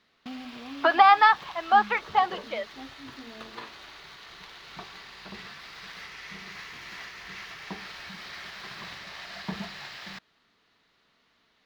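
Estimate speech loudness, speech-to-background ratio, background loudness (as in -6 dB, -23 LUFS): -21.5 LUFS, 19.5 dB, -41.0 LUFS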